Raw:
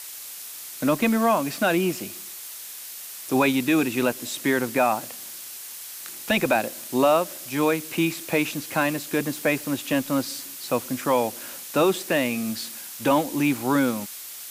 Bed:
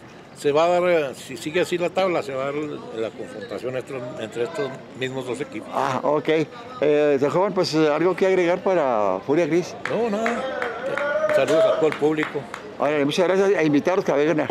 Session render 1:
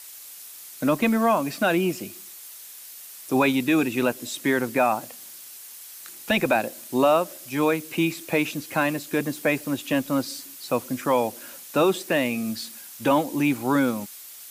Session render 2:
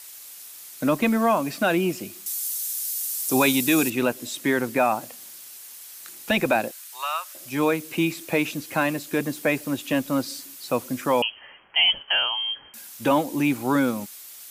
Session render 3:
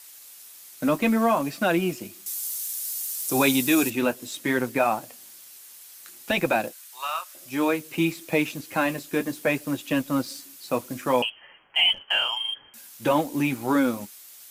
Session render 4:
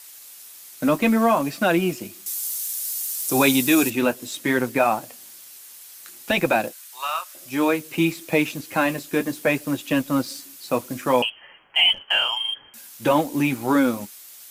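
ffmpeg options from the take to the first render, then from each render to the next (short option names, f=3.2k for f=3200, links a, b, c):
-af "afftdn=nr=6:nf=-39"
-filter_complex "[0:a]asettb=1/sr,asplit=3[a][b][c];[a]atrim=end=2.264[d];[b]atrim=start=2.26:end=3.9,asetpts=PTS-STARTPTS,afade=t=in:d=0.004:c=qsin,afade=t=out:st=1.636:d=0.004:c=qsin,bass=f=250:g=0,treble=f=4k:g=14[e];[c]atrim=start=3.896[f];[d][e]acrossfade=d=0.004:c1=hsin:c2=qsin[g];[g][f]acrossfade=d=0.004:c1=qsin:c2=hsin,asettb=1/sr,asplit=3[h][i][j];[h]atrim=end=6.714[k];[i]atrim=start=6.71:end=7.35,asetpts=PTS-STARTPTS,afade=t=in:d=0.004:c=qsin,afade=t=out:st=0.636:d=0.004:c=qsin,highpass=f=1.1k:w=0.5412,highpass=f=1.1k:w=1.3066[l];[j]atrim=start=7.346[m];[k][l]acrossfade=d=0.004:c1=hsin:c2=qsin[n];[n][m]acrossfade=d=0.004:c1=qsin:c2=hsin,asettb=1/sr,asplit=3[o][p][q];[o]atrim=end=11.224[r];[p]atrim=start=11.22:end=12.74,asetpts=PTS-STARTPTS,afade=t=in:d=0.004:c=qsin,afade=t=out:st=1.516:d=0.004:c=qsin,lowpass=f=2.9k:t=q:w=0.5098,lowpass=f=2.9k:t=q:w=0.6013,lowpass=f=2.9k:t=q:w=0.9,lowpass=f=2.9k:t=q:w=2.563,afreqshift=-3400[s];[q]atrim=start=12.736[t];[r][s]acrossfade=d=0.004:c1=hsin:c2=qsin[u];[u][t]acrossfade=d=0.004:c1=qsin:c2=hsin"
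-filter_complex "[0:a]flanger=delay=5.4:depth=6.6:regen=-44:speed=0.61:shape=triangular,asplit=2[a][b];[b]aeval=exprs='sgn(val(0))*max(abs(val(0))-0.0141,0)':c=same,volume=-7dB[c];[a][c]amix=inputs=2:normalize=0"
-af "volume=3dB"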